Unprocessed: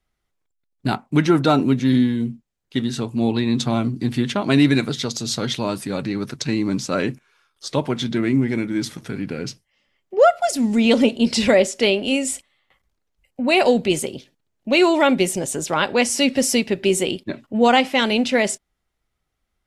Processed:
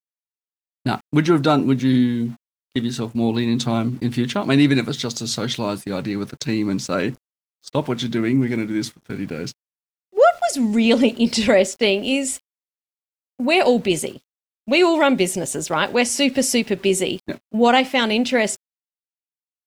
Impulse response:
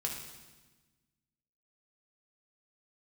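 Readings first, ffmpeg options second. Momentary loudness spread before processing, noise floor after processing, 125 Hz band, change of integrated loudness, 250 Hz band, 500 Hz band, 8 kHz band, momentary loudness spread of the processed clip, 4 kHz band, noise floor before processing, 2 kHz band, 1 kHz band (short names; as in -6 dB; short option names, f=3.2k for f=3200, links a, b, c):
12 LU, under -85 dBFS, 0.0 dB, 0.0 dB, 0.0 dB, 0.0 dB, 0.0 dB, 11 LU, 0.0 dB, -76 dBFS, 0.0 dB, 0.0 dB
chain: -af "aeval=exprs='val(0)*gte(abs(val(0)),0.00794)':c=same,agate=range=-17dB:threshold=-29dB:ratio=16:detection=peak"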